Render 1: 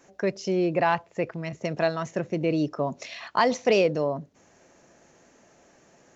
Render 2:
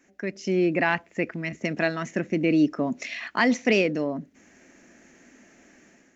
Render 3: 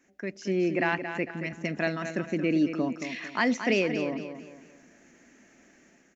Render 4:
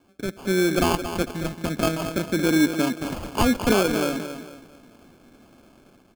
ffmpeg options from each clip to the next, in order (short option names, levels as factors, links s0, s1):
-af "equalizer=f=125:t=o:w=1:g=-10,equalizer=f=250:t=o:w=1:g=9,equalizer=f=500:t=o:w=1:g=-6,equalizer=f=1000:t=o:w=1:g=-8,equalizer=f=2000:t=o:w=1:g=8,equalizer=f=4000:t=o:w=1:g=-5,dynaudnorm=f=280:g=3:m=2.66,volume=0.562"
-af "aecho=1:1:225|450|675|900:0.355|0.124|0.0435|0.0152,volume=0.631"
-af "acrusher=samples=23:mix=1:aa=0.000001,volume=1.88"